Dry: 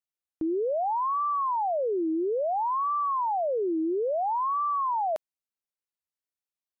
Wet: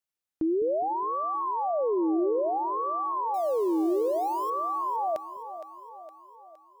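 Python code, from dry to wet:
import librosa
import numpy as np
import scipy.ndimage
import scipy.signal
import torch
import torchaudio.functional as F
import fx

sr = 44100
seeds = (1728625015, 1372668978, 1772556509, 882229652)

y = fx.crossing_spikes(x, sr, level_db=-40.0, at=(3.34, 4.5))
y = fx.dynamic_eq(y, sr, hz=1100.0, q=1.1, threshold_db=-39.0, ratio=4.0, max_db=-5)
y = fx.echo_split(y, sr, split_hz=390.0, low_ms=205, high_ms=464, feedback_pct=52, wet_db=-11.5)
y = F.gain(torch.from_numpy(y), 2.0).numpy()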